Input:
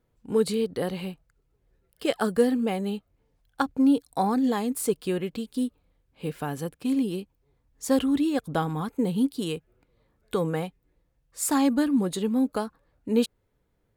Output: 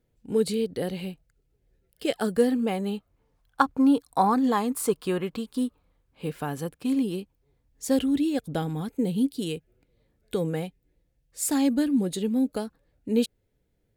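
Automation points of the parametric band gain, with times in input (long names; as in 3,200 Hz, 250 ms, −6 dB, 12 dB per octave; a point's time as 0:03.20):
parametric band 1,100 Hz 0.83 octaves
0:02.12 −9.5 dB
0:02.51 −1.5 dB
0:03.61 +8.5 dB
0:05.62 +8.5 dB
0:06.30 +0.5 dB
0:07.08 +0.5 dB
0:08.16 −11.5 dB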